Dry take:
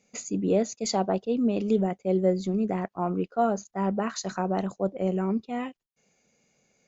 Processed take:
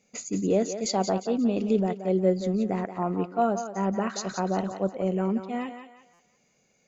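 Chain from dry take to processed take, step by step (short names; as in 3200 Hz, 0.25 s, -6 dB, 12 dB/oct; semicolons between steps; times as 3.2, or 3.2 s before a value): thinning echo 0.177 s, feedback 38%, high-pass 430 Hz, level -8 dB; stuck buffer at 6.13, samples 256, times 10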